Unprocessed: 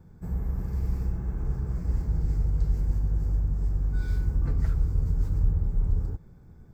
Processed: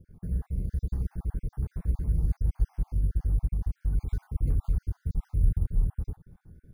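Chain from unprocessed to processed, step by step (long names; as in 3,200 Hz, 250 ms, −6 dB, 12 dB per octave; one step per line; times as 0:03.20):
time-frequency cells dropped at random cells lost 45%
low-shelf EQ 310 Hz +5.5 dB
bad sample-rate conversion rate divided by 4×, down filtered, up hold
level −4.5 dB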